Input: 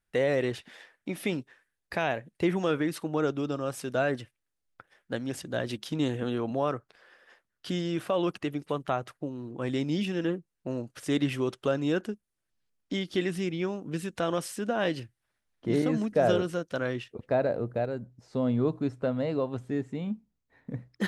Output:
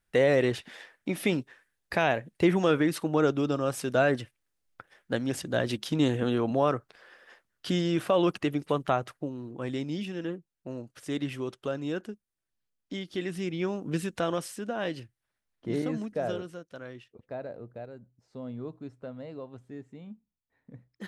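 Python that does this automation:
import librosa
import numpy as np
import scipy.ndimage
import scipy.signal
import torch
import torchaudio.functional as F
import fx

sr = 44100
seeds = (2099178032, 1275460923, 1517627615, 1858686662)

y = fx.gain(x, sr, db=fx.line((8.85, 3.5), (10.03, -5.0), (13.16, -5.0), (13.91, 3.5), (14.65, -4.0), (15.89, -4.0), (16.68, -12.0)))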